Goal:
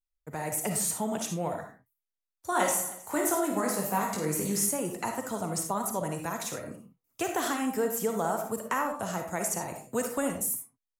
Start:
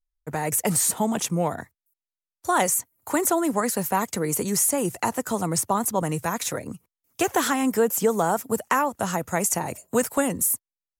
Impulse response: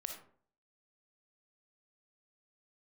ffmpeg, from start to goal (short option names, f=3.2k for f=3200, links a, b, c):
-filter_complex "[0:a]asettb=1/sr,asplit=3[a][b][c];[a]atrim=end=2.504[d];[b]atrim=start=2.5:end=4.66,asetpts=PTS-STARTPTS,afade=t=in:d=0.004:c=qsin,afade=t=out:st=2.156:d=0.004:c=qsin,aecho=1:1:20|52|103.2|185.1|316.2:0.631|0.398|0.251|0.158|0.1,atrim=end_sample=95256[e];[c]atrim=start=4.656[f];[d][e]acrossfade=d=0.004:c1=hsin:c2=qsin[g];[g][f]acrossfade=d=0.004:c1=qsin:c2=hsin[h];[1:a]atrim=start_sample=2205,afade=t=out:st=0.26:d=0.01,atrim=end_sample=11907[i];[h][i]afir=irnorm=-1:irlink=0,volume=-5dB"